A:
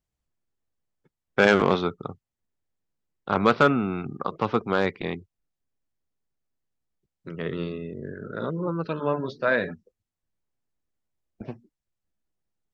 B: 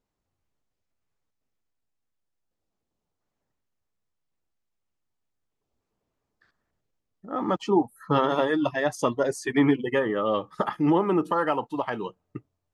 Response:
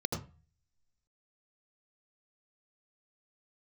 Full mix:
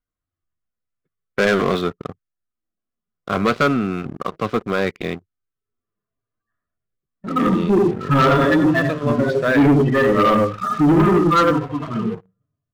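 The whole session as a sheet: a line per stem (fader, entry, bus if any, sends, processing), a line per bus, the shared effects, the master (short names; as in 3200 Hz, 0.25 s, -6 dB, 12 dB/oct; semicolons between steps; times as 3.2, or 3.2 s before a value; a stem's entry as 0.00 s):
-6.0 dB, 0.00 s, no send, dry
+0.5 dB, 0.00 s, send -11.5 dB, median-filter separation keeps harmonic; Bessel low-pass 2600 Hz; bell 1500 Hz +7.5 dB 1.7 oct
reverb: on, RT60 0.35 s, pre-delay 75 ms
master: Butterworth band-stop 870 Hz, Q 4.2; sample leveller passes 3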